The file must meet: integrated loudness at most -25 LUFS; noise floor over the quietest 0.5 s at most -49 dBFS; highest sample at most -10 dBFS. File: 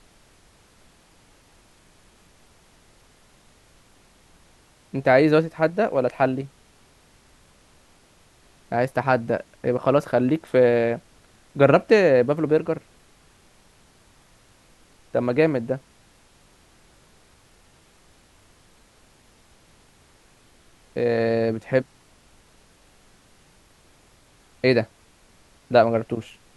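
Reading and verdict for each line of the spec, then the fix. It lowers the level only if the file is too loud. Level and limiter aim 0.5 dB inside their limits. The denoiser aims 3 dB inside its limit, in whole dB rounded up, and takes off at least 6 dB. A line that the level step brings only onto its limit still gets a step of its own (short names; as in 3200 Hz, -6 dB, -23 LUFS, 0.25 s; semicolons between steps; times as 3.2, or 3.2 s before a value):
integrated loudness -21.5 LUFS: fail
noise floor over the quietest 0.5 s -56 dBFS: OK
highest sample -4.0 dBFS: fail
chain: gain -4 dB; limiter -10.5 dBFS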